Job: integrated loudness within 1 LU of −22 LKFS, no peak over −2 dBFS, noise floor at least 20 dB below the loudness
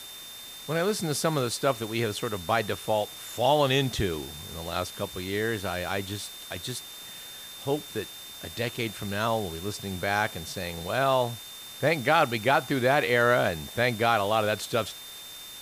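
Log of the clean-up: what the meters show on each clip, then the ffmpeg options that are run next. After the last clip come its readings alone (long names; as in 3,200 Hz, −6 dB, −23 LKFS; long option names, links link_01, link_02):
interfering tone 3,600 Hz; level of the tone −43 dBFS; background noise floor −43 dBFS; target noise floor −48 dBFS; integrated loudness −27.5 LKFS; sample peak −9.5 dBFS; target loudness −22.0 LKFS
→ -af "bandreject=frequency=3600:width=30"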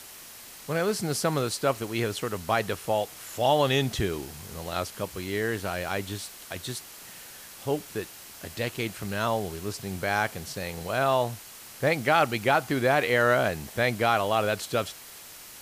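interfering tone none found; background noise floor −46 dBFS; target noise floor −48 dBFS
→ -af "afftdn=noise_reduction=6:noise_floor=-46"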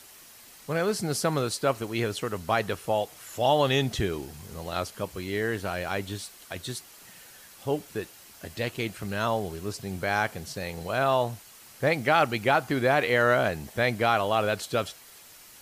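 background noise floor −51 dBFS; integrated loudness −27.5 LKFS; sample peak −9.5 dBFS; target loudness −22.0 LKFS
→ -af "volume=5.5dB"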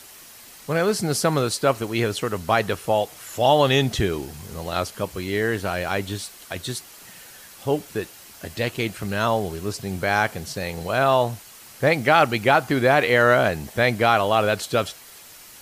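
integrated loudness −22.0 LKFS; sample peak −4.0 dBFS; background noise floor −45 dBFS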